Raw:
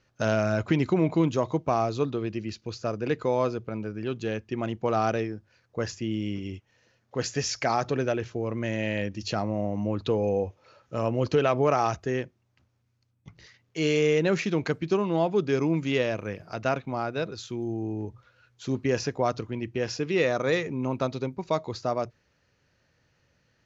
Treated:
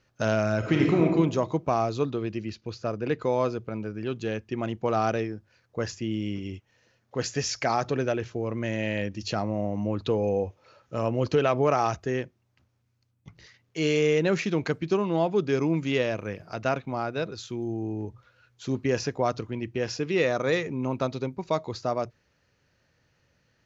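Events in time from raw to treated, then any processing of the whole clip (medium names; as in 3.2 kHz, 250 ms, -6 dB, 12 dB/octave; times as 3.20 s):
0.58–1.03 s: reverb throw, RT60 0.99 s, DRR -0.5 dB
2.49–3.22 s: distance through air 76 m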